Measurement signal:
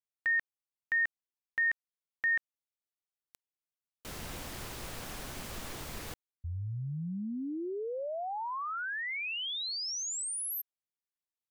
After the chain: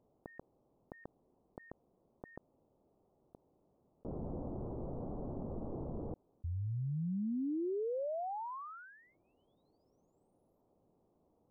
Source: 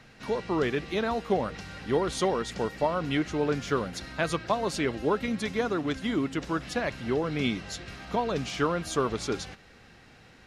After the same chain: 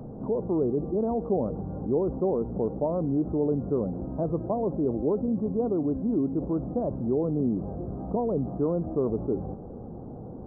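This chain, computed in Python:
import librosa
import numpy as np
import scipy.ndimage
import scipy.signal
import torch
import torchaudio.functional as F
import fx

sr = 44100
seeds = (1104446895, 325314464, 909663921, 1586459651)

y = scipy.ndimage.gaussian_filter1d(x, 14.0, mode='constant')
y = fx.low_shelf(y, sr, hz=130.0, db=-9.5)
y = fx.env_flatten(y, sr, amount_pct=50)
y = y * librosa.db_to_amplitude(3.5)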